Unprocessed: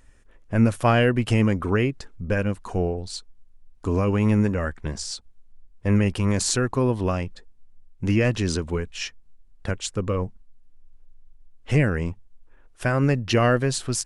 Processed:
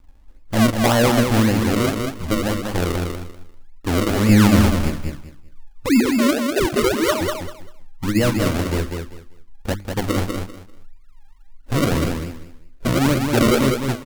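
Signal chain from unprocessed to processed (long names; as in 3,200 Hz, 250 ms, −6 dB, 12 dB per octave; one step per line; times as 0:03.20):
0:05.86–0:07.21: three sine waves on the formant tracks
Butterworth low-pass 1,700 Hz 72 dB per octave
low-pass that shuts in the quiet parts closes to 310 Hz, open at −15.5 dBFS
0:04.29–0:04.90: tilt shelving filter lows +9.5 dB, about 640 Hz
mains-hum notches 50/100/150/200/250/300/350/400 Hz
comb filter 3.5 ms, depth 40%
in parallel at −3 dB: brickwall limiter −17.5 dBFS, peak gain reduction 11.5 dB
on the sum: sample-and-hold swept by an LFO 36×, swing 100% 1.8 Hz
pitch vibrato 7.8 Hz 47 cents
on a send: repeating echo 196 ms, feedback 22%, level −5 dB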